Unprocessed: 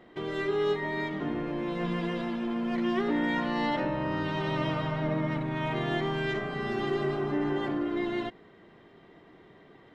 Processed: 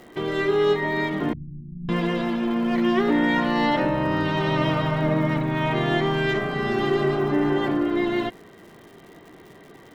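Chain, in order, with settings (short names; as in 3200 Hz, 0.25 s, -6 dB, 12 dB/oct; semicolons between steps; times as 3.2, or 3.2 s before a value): crackle 210/s -49 dBFS; 1.33–1.89 inverse Chebyshev low-pass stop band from 530 Hz, stop band 60 dB; gain +7.5 dB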